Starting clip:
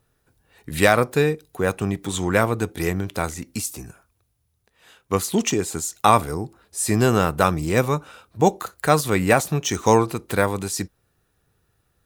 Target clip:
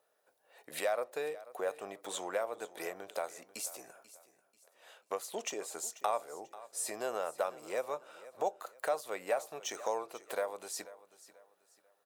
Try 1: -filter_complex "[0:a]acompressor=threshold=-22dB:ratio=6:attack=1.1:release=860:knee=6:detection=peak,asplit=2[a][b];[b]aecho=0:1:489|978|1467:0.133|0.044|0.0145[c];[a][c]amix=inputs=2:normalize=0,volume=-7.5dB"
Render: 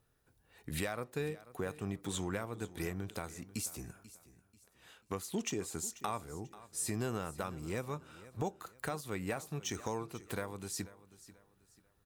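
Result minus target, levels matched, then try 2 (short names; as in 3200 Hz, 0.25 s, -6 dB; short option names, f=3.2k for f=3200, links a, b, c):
500 Hz band -3.5 dB
-filter_complex "[0:a]acompressor=threshold=-22dB:ratio=6:attack=1.1:release=860:knee=6:detection=peak,highpass=f=590:t=q:w=3.7,asplit=2[a][b];[b]aecho=0:1:489|978|1467:0.133|0.044|0.0145[c];[a][c]amix=inputs=2:normalize=0,volume=-7.5dB"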